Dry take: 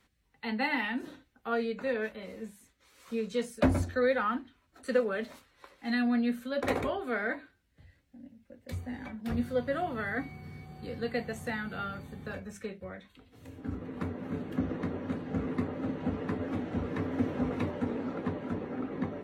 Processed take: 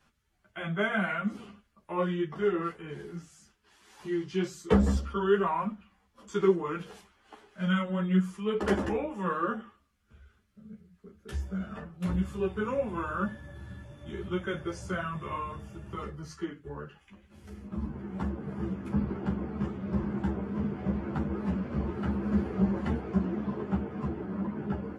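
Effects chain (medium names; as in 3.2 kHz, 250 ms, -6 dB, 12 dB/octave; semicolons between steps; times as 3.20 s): tape speed -23%; three-phase chorus; trim +4.5 dB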